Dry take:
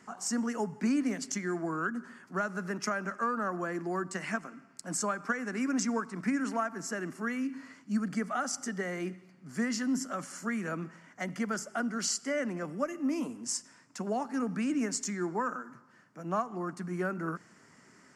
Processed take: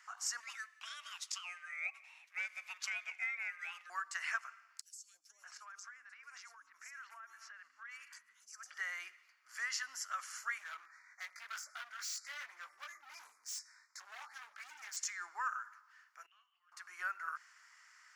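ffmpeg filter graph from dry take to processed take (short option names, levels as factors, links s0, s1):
-filter_complex "[0:a]asettb=1/sr,asplit=3[s0][s1][s2];[s0]atrim=end=0.404[s3];[s1]atrim=start=0.4:end=3.9,asetpts=PTS-STARTPTS,afade=t=in:d=0.004:c=qsin,afade=t=out:st=3.496:d=0.004:c=qsin,highpass=850,aeval=exprs='val(0)*sin(2*PI*890*n/s)':c=same[s4];[s2]atrim=start=3.896[s5];[s3][s4]acrossfade=d=0.004:c1=hsin:c2=qsin[s6];[s6][s5]acrossfade=d=0.004:c1=qsin:c2=hsin,asettb=1/sr,asplit=3[s7][s8][s9];[s7]atrim=end=4.814[s10];[s8]atrim=start=4.81:end=8.74,asetpts=PTS-STARTPTS,afade=t=in:d=0.004:c=qsin,afade=t=out:st=3.926:d=0.004:c=qsin,acrossover=split=420|4300[s11][s12][s13];[s11]adelay=280[s14];[s12]adelay=580[s15];[s14][s15][s13]amix=inputs=3:normalize=0,atrim=end_sample=173313,acompressor=threshold=0.00708:ratio=16:attack=3.2:release=140:knee=1:detection=peak[s16];[s9]atrim=start=8.736[s17];[s10][s16]acrossfade=d=0.004:c1=hsin:c2=qsin[s18];[s18][s17]acrossfade=d=0.004:c1=qsin:c2=hsin,asettb=1/sr,asplit=3[s19][s20][s21];[s19]atrim=end=10.584[s22];[s20]atrim=start=10.58:end=14.97,asetpts=PTS-STARTPTS,afade=t=in:d=0.004:c=qsin,afade=t=out:st=4.386:d=0.004:c=qsin,asuperstop=centerf=3000:order=12:qfactor=2.2,flanger=delay=19:depth=2.2:speed=1.9,asoftclip=type=hard:threshold=0.0133[s23];[s21]atrim=start=14.966[s24];[s22][s23]acrossfade=d=0.004:c1=hsin:c2=qsin[s25];[s25][s24]acrossfade=d=0.004:c1=qsin:c2=hsin,asettb=1/sr,asplit=3[s26][s27][s28];[s26]atrim=end=16.264[s29];[s27]atrim=start=16.26:end=16.72,asetpts=PTS-STARTPTS,afade=t=in:d=0.004:c=qsin,afade=t=out:st=0.456:d=0.004:c=qsin,acompressor=threshold=0.0224:ratio=4:attack=3.2:release=140:knee=1:detection=peak,bandpass=f=3000:t=q:w=12,asplit=2[s30][s31];[s31]adelay=22,volume=0.355[s32];[s30][s32]amix=inputs=2:normalize=0,atrim=end_sample=20286[s33];[s28]atrim=start=16.716[s34];[s29][s33]acrossfade=d=0.004:c1=hsin:c2=qsin[s35];[s35][s34]acrossfade=d=0.004:c1=qsin:c2=hsin,highpass=f=1200:w=0.5412,highpass=f=1200:w=1.3066,equalizer=f=8600:w=2.5:g=-8"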